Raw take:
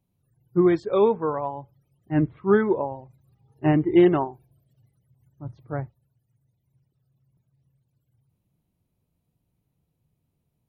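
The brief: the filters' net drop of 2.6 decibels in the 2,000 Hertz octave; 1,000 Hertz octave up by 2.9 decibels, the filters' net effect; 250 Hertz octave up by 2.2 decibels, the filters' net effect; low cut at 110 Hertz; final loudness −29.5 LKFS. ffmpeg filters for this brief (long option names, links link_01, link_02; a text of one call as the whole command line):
ffmpeg -i in.wav -af "highpass=110,equalizer=frequency=250:width_type=o:gain=3.5,equalizer=frequency=1000:width_type=o:gain=4.5,equalizer=frequency=2000:width_type=o:gain=-5.5,volume=-9dB" out.wav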